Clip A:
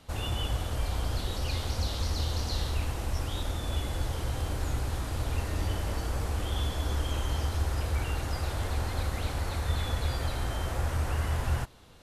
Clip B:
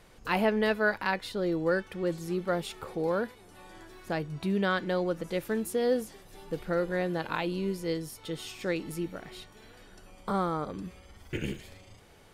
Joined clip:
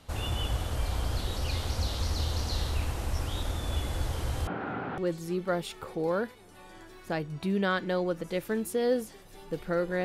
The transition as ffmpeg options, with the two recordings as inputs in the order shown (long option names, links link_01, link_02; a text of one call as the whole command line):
ffmpeg -i cue0.wav -i cue1.wav -filter_complex "[0:a]asettb=1/sr,asplit=3[link_01][link_02][link_03];[link_01]atrim=end=4.474[link_04];[link_02]atrim=start=4.47:end=4.98,asetpts=PTS-STARTPTS,afade=type=in:duration=0.004:curve=qsin,afade=type=out:start_time=0.506:duration=0.004:curve=qsin,highpass=frequency=150:width=0.5412,highpass=frequency=150:width=1.3066,equalizer=frequency=180:width_type=q:width=4:gain=9,equalizer=frequency=260:width_type=q:width=4:gain=5,equalizer=frequency=410:width_type=q:width=4:gain=5,equalizer=frequency=760:width_type=q:width=4:gain=7,equalizer=frequency=1400:width_type=q:width=4:gain=10,lowpass=frequency=2600:width=0.5412,lowpass=frequency=2600:width=1.3066[link_05];[link_03]atrim=start=4.976[link_06];[link_04][link_05]acrossfade=duration=0.004:curve1=hsin:curve2=qsin[link_07];[link_07][link_06]acrossfade=duration=0.004:curve1=qsin:curve2=hsin,apad=whole_dur=10.04,atrim=end=10.04,atrim=end=4.982[link_08];[1:a]atrim=start=1.978:end=7.04[link_09];[link_08][link_09]acrossfade=duration=0.004:curve1=hsin:curve2=hsin" out.wav